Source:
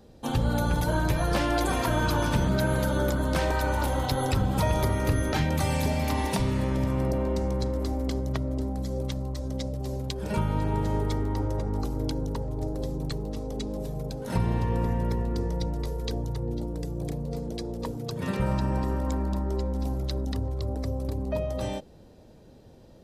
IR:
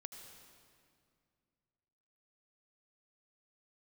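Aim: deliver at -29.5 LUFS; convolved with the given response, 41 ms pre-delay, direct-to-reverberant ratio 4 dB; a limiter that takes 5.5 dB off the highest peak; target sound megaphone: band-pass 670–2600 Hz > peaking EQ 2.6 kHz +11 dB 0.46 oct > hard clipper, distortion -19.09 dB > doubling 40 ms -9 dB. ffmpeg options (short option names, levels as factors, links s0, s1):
-filter_complex "[0:a]alimiter=limit=0.106:level=0:latency=1,asplit=2[s0][s1];[1:a]atrim=start_sample=2205,adelay=41[s2];[s1][s2]afir=irnorm=-1:irlink=0,volume=1.06[s3];[s0][s3]amix=inputs=2:normalize=0,highpass=670,lowpass=2600,equalizer=f=2600:t=o:w=0.46:g=11,asoftclip=type=hard:threshold=0.0422,asplit=2[s4][s5];[s5]adelay=40,volume=0.355[s6];[s4][s6]amix=inputs=2:normalize=0,volume=2.24"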